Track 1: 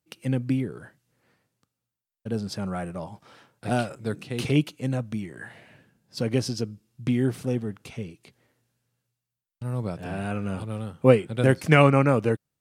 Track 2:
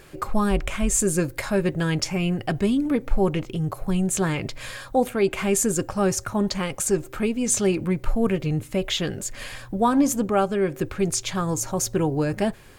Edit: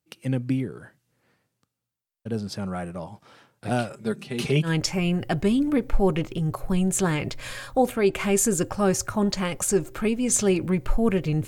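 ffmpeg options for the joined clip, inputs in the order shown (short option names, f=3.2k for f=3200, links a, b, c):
-filter_complex "[0:a]asettb=1/sr,asplit=3[a][b][c];[a]atrim=end=3.934[d];[b]atrim=start=3.93:end=4.7,asetpts=PTS-STARTPTS,afade=t=in:d=0.004:c=qsin,afade=t=out:st=0.766:d=0.004:c=qsin,aecho=1:1:5:0.7,atrim=end_sample=33957[e];[c]atrim=start=4.696[f];[d][e]acrossfade=d=0.004:c1=hsin:c2=qsin[g];[g][f]acrossfade=d=0.004:c1=qsin:c2=hsin,apad=whole_dur=11.47,atrim=end=11.47,atrim=end=4.7,asetpts=PTS-STARTPTS[h];[1:a]atrim=start=1.8:end=8.65,asetpts=PTS-STARTPTS[i];[h][i]acrossfade=d=0.08:c1=tri:c2=tri"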